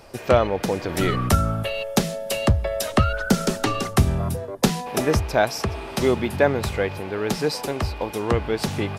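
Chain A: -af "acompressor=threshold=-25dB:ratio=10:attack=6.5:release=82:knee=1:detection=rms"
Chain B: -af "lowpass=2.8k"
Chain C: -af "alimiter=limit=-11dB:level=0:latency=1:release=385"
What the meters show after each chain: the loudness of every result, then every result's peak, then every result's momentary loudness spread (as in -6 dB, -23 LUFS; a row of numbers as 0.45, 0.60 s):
-30.0, -23.5, -26.0 LUFS; -10.5, -3.0, -11.0 dBFS; 2, 7, 4 LU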